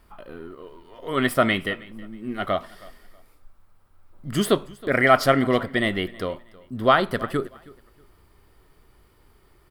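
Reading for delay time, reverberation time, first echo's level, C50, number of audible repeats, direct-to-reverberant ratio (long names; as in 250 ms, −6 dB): 319 ms, no reverb audible, −22.0 dB, no reverb audible, 2, no reverb audible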